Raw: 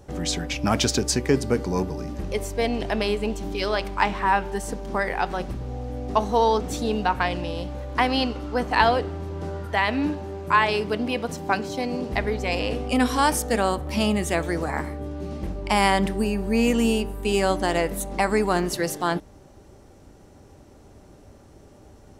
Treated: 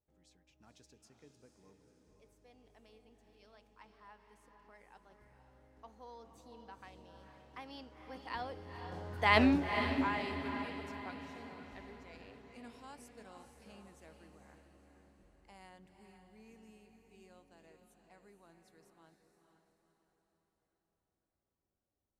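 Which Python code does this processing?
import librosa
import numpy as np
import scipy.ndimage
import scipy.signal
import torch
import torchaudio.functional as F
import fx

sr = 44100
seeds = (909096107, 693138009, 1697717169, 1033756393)

y = fx.doppler_pass(x, sr, speed_mps=18, closest_m=1.4, pass_at_s=9.41)
y = fx.echo_diffused(y, sr, ms=486, feedback_pct=50, wet_db=-7)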